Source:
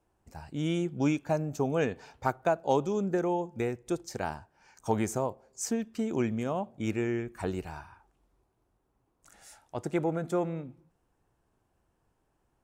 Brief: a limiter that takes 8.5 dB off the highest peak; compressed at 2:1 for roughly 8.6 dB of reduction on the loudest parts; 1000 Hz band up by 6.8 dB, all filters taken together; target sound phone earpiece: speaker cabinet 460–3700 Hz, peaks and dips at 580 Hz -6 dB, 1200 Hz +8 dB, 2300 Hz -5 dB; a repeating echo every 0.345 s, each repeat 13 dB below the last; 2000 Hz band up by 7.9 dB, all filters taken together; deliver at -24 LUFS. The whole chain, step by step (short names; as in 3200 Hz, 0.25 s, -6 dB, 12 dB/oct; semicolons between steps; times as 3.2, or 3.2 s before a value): bell 1000 Hz +5.5 dB; bell 2000 Hz +9 dB; compressor 2:1, threshold -34 dBFS; limiter -24 dBFS; speaker cabinet 460–3700 Hz, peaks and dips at 580 Hz -6 dB, 1200 Hz +8 dB, 2300 Hz -5 dB; feedback echo 0.345 s, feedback 22%, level -13 dB; gain +16.5 dB